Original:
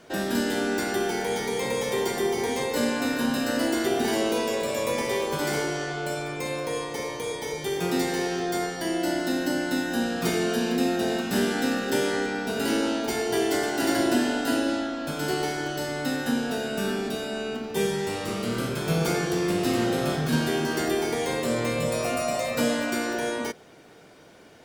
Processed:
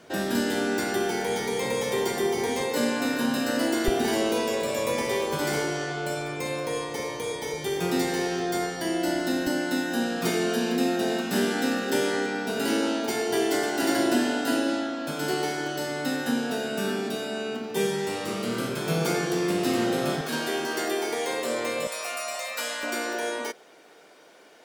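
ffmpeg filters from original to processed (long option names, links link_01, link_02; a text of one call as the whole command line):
ffmpeg -i in.wav -af "asetnsamples=nb_out_samples=441:pad=0,asendcmd='2.61 highpass f 120;3.88 highpass f 43;9.47 highpass f 150;20.21 highpass f 370;21.87 highpass f 1000;22.83 highpass f 380',highpass=56" out.wav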